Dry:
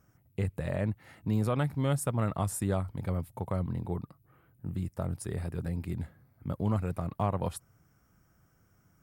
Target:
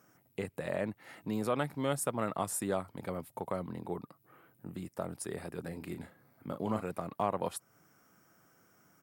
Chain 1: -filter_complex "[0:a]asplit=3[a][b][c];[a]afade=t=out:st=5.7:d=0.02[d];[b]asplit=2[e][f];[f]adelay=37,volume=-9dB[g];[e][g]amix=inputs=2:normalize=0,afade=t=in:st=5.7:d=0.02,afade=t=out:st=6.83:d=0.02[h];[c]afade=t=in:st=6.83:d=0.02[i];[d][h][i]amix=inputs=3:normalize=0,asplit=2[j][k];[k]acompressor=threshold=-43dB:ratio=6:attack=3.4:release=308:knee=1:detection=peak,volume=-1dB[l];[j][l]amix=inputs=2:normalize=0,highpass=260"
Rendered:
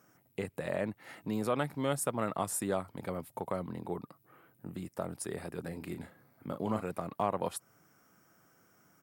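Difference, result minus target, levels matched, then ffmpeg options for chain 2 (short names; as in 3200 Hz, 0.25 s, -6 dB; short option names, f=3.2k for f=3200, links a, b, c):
compressor: peak gain reduction -6 dB
-filter_complex "[0:a]asplit=3[a][b][c];[a]afade=t=out:st=5.7:d=0.02[d];[b]asplit=2[e][f];[f]adelay=37,volume=-9dB[g];[e][g]amix=inputs=2:normalize=0,afade=t=in:st=5.7:d=0.02,afade=t=out:st=6.83:d=0.02[h];[c]afade=t=in:st=6.83:d=0.02[i];[d][h][i]amix=inputs=3:normalize=0,asplit=2[j][k];[k]acompressor=threshold=-50.5dB:ratio=6:attack=3.4:release=308:knee=1:detection=peak,volume=-1dB[l];[j][l]amix=inputs=2:normalize=0,highpass=260"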